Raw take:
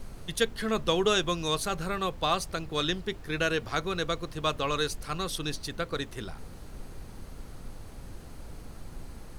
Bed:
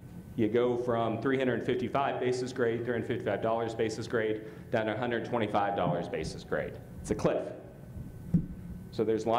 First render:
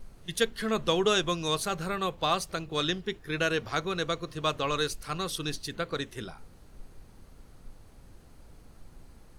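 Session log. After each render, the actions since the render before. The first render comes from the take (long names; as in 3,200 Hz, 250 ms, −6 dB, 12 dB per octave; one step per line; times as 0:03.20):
noise reduction from a noise print 9 dB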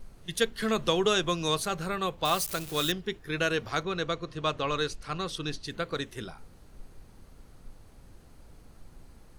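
0:00.62–0:01.60: multiband upward and downward compressor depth 40%
0:02.25–0:02.92: spike at every zero crossing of −27.5 dBFS
0:03.83–0:05.68: high-frequency loss of the air 62 metres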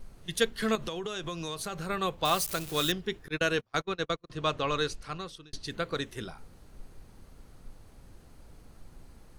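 0:00.75–0:01.90: downward compressor, threshold −32 dBFS
0:03.28–0:04.30: noise gate −32 dBFS, range −35 dB
0:04.92–0:05.53: fade out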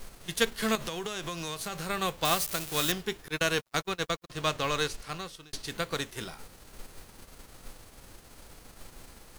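spectral envelope flattened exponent 0.6
log-companded quantiser 6 bits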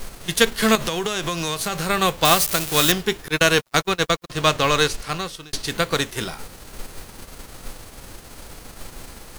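level +11 dB
brickwall limiter −2 dBFS, peak gain reduction 2 dB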